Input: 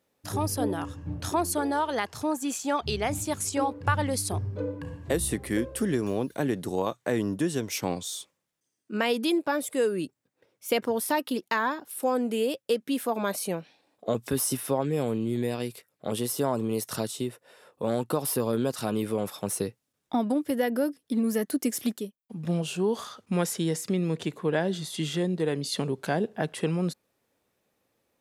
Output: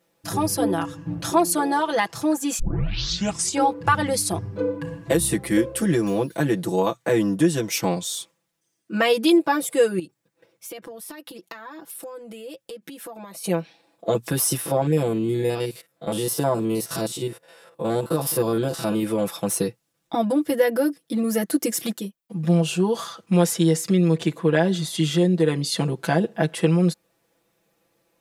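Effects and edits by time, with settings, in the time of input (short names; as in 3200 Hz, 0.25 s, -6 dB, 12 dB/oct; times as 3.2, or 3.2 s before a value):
2.59 tape start 0.97 s
9.99–13.44 compressor 10:1, threshold -40 dBFS
14.61–19.03 stepped spectrum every 50 ms
whole clip: comb 6 ms, depth 97%; gain +3.5 dB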